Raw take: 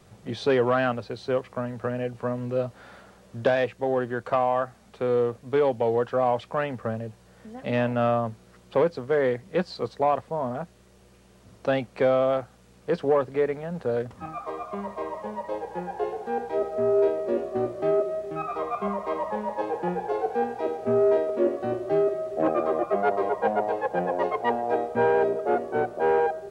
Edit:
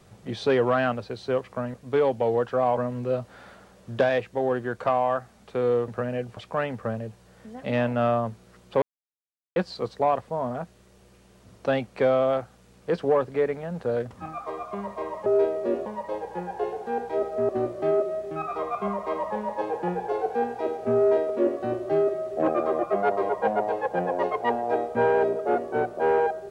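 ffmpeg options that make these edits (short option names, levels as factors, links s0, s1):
-filter_complex "[0:a]asplit=10[s0][s1][s2][s3][s4][s5][s6][s7][s8][s9];[s0]atrim=end=1.742[s10];[s1]atrim=start=5.338:end=6.372[s11];[s2]atrim=start=2.228:end=5.342[s12];[s3]atrim=start=1.738:end=2.232[s13];[s4]atrim=start=6.368:end=8.82,asetpts=PTS-STARTPTS,afade=t=out:st=2.448:d=0.004:c=hsin[s14];[s5]atrim=start=8.82:end=9.56,asetpts=PTS-STARTPTS,volume=0[s15];[s6]atrim=start=9.56:end=15.262,asetpts=PTS-STARTPTS,afade=t=in:d=0.004:c=hsin[s16];[s7]atrim=start=16.888:end=17.492[s17];[s8]atrim=start=15.258:end=16.892[s18];[s9]atrim=start=17.488[s19];[s10][s11]acrossfade=d=0.004:c1=hsin:c2=hsin[s20];[s20][s12]acrossfade=d=0.004:c1=hsin:c2=hsin[s21];[s21][s13]acrossfade=d=0.004:c1=hsin:c2=hsin[s22];[s14][s15][s16]concat=n=3:v=0:a=1[s23];[s22][s23]acrossfade=d=0.004:c1=hsin:c2=hsin[s24];[s24][s17]acrossfade=d=0.004:c1=hsin:c2=hsin[s25];[s25][s18]acrossfade=d=0.004:c1=hsin:c2=hsin[s26];[s26][s19]acrossfade=d=0.004:c1=hsin:c2=hsin"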